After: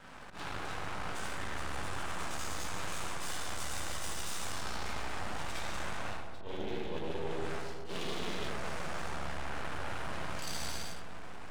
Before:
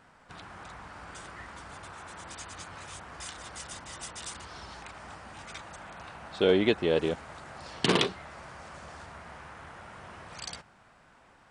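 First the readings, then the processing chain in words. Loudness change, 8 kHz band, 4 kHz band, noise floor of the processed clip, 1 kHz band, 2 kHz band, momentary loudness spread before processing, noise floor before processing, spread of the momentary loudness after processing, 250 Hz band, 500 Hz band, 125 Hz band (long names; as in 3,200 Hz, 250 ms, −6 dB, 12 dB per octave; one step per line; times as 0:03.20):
−7.5 dB, +1.5 dB, −5.0 dB, −39 dBFS, +0.5 dB, −1.5 dB, 20 LU, −59 dBFS, 4 LU, −9.5 dB, −10.0 dB, −2.5 dB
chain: harmonic and percussive parts rebalanced harmonic +3 dB
reverb whose tail is shaped and stops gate 480 ms falling, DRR −5.5 dB
reversed playback
downward compressor 20 to 1, threshold −37 dBFS, peak gain reduction 26 dB
reversed playback
volume swells 115 ms
half-wave rectification
feedback echo with a low-pass in the loop 136 ms, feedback 83%, low-pass 1,300 Hz, level −9 dB
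level +5 dB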